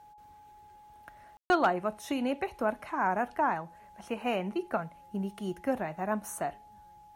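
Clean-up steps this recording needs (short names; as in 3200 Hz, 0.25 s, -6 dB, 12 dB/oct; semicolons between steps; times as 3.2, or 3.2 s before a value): clip repair -16 dBFS; notch 840 Hz, Q 30; room tone fill 1.37–1.5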